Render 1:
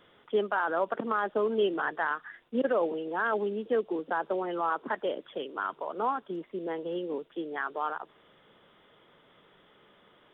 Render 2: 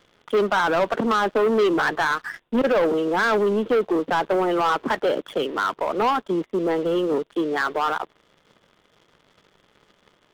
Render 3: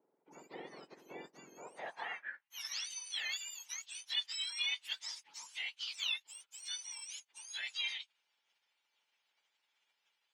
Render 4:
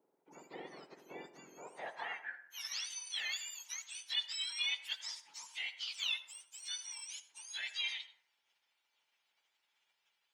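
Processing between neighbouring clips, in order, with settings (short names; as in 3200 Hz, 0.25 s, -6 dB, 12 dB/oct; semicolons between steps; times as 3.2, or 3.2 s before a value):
low shelf 120 Hz +8 dB; sample leveller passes 3; gain +1.5 dB
spectrum mirrored in octaves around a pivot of 1700 Hz; band-pass sweep 370 Hz -> 3300 Hz, 1.55–2.64; ending taper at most 520 dB/s; gain -7 dB
reverb RT60 0.70 s, pre-delay 62 ms, DRR 12 dB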